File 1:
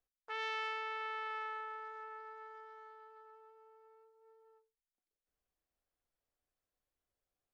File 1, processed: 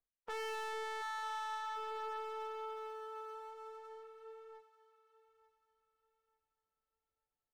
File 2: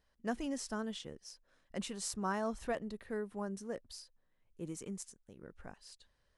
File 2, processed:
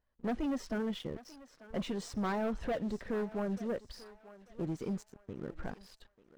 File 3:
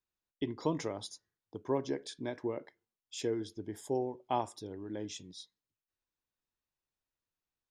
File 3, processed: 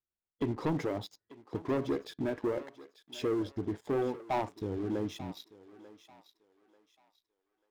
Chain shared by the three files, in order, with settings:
coarse spectral quantiser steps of 15 dB; in parallel at +1.5 dB: compression 6:1, threshold -48 dBFS; on the sum: tape spacing loss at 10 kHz 26 dB; waveshaping leveller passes 3; thinning echo 890 ms, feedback 34%, high-pass 560 Hz, level -14.5 dB; trim -4.5 dB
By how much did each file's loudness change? -1.0 LU, +3.5 LU, +3.0 LU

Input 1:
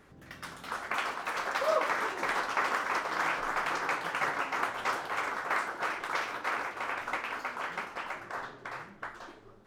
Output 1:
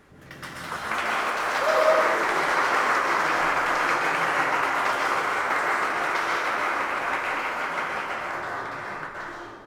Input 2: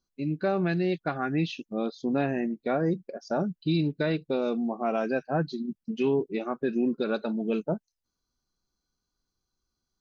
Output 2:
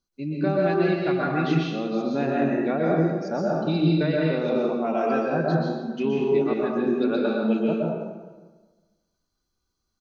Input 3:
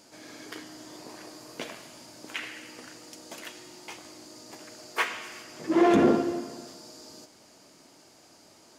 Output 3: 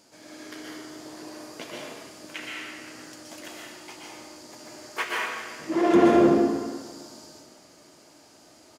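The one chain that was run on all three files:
feedback delay 151 ms, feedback 54%, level -23 dB; plate-style reverb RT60 1.3 s, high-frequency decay 0.65×, pre-delay 110 ms, DRR -3.5 dB; normalise loudness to -24 LUFS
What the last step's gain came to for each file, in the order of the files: +3.5 dB, -0.5 dB, -3.0 dB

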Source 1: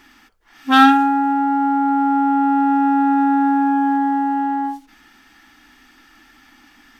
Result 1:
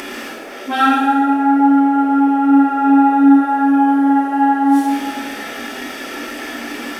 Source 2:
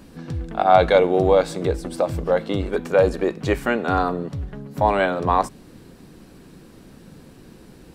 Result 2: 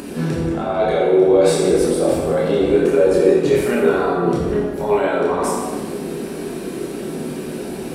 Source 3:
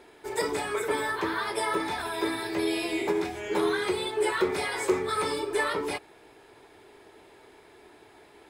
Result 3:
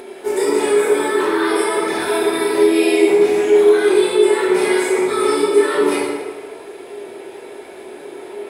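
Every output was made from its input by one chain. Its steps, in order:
reverse; compression 5:1, threshold -28 dBFS; reverse; peak limiter -26.5 dBFS; fifteen-band graphic EQ 400 Hz +9 dB, 2.5 kHz +4 dB, 10 kHz +8 dB; band noise 370–720 Hz -58 dBFS; chorus voices 4, 0.44 Hz, delay 28 ms, depth 4.2 ms; resonant low shelf 160 Hz -7 dB, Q 1.5; plate-style reverb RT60 1.5 s, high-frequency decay 0.7×, DRR -4.5 dB; upward compressor, threshold -43 dBFS; high-pass 41 Hz; peak normalisation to -1.5 dBFS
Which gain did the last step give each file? +17.0 dB, +12.0 dB, +9.5 dB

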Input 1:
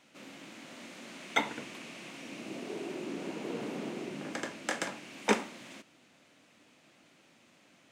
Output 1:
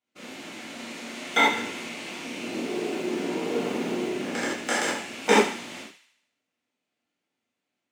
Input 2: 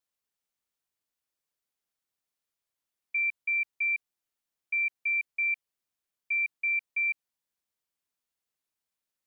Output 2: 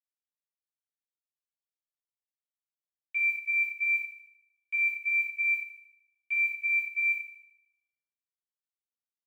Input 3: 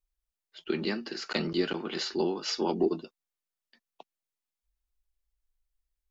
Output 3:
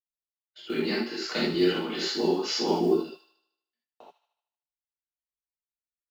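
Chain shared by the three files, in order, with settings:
block-companded coder 7-bit; high-pass 52 Hz; gate -55 dBFS, range -30 dB; on a send: feedback echo behind a high-pass 76 ms, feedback 53%, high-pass 1.5 kHz, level -10 dB; on the sum: gated-style reverb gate 110 ms flat, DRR -7 dB; normalise loudness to -27 LUFS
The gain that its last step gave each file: +2.0 dB, -5.5 dB, -4.0 dB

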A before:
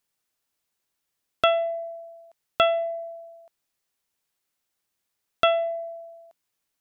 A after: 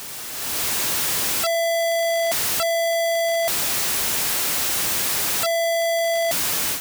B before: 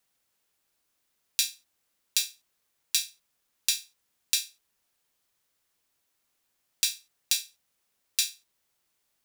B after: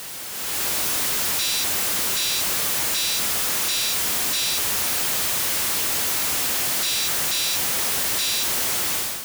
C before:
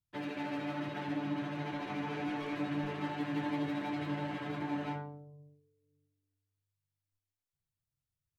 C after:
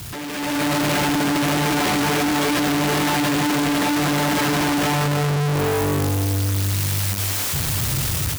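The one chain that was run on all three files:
one-bit comparator; high-pass 42 Hz; level rider gain up to 12 dB; normalise loudness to -20 LUFS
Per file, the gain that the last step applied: -3.0 dB, +1.5 dB, +7.5 dB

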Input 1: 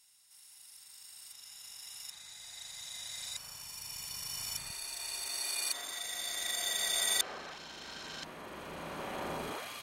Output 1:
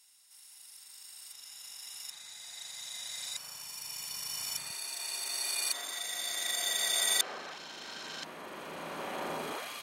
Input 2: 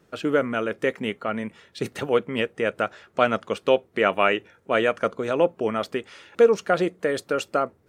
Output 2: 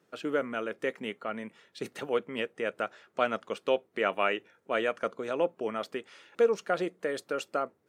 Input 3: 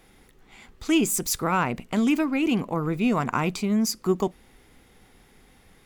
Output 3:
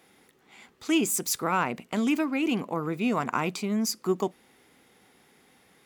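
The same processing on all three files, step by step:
Bessel high-pass 210 Hz, order 2; peak normalisation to -12 dBFS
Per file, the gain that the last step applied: +2.0 dB, -7.5 dB, -2.0 dB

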